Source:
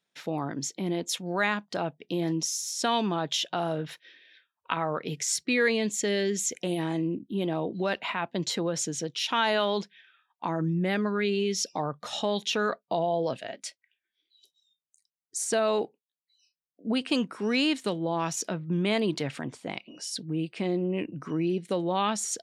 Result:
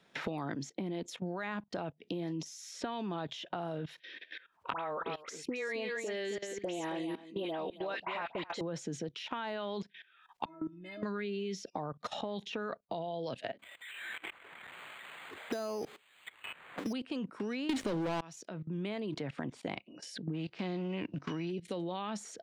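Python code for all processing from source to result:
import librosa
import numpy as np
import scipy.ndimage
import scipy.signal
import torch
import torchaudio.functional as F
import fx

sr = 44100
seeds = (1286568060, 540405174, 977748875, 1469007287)

y = fx.chain(x, sr, fx.highpass(hz=460.0, slope=12),
    fx.dispersion(late='highs', ms=78.0, hz=1700.0),
    fx.echo_single(ms=269, db=-9.0), at=(4.73, 8.61))
y = fx.chain(y, sr, fx.tilt_eq(slope=-1.5),
    fx.stiff_resonator(f0_hz=310.0, decay_s=0.33, stiffness=0.008),
    fx.sustainer(db_per_s=79.0), at=(10.45, 11.03))
y = fx.chain(y, sr, fx.crossing_spikes(level_db=-28.5),
    fx.air_absorb(metres=51.0),
    fx.resample_bad(factor=8, down='filtered', up='hold'), at=(13.59, 16.93))
y = fx.chain(y, sr, fx.leveller(passes=5),
    fx.env_flatten(amount_pct=100), at=(17.69, 18.21))
y = fx.envelope_flatten(y, sr, power=0.6, at=(20.33, 21.5), fade=0.02)
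y = fx.lowpass(y, sr, hz=5800.0, slope=24, at=(20.33, 21.5), fade=0.02)
y = fx.level_steps(y, sr, step_db=19)
y = fx.lowpass(y, sr, hz=1900.0, slope=6)
y = fx.band_squash(y, sr, depth_pct=100)
y = y * 10.0 ** (1.0 / 20.0)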